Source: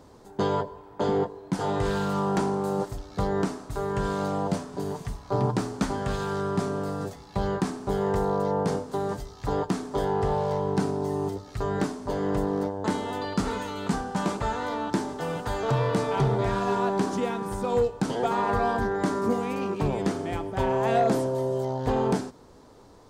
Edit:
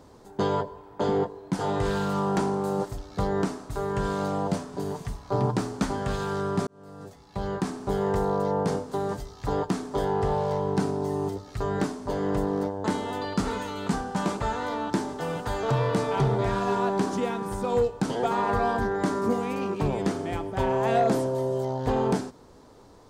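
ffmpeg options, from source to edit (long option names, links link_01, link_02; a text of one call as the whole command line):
ffmpeg -i in.wav -filter_complex "[0:a]asplit=2[link_01][link_02];[link_01]atrim=end=6.67,asetpts=PTS-STARTPTS,afade=type=out:start_time=6.666:duration=0.004:curve=hsin[link_03];[link_02]atrim=start=6.67,asetpts=PTS-STARTPTS,afade=type=in:duration=1.16[link_04];[link_03][link_04]concat=n=2:v=0:a=1" out.wav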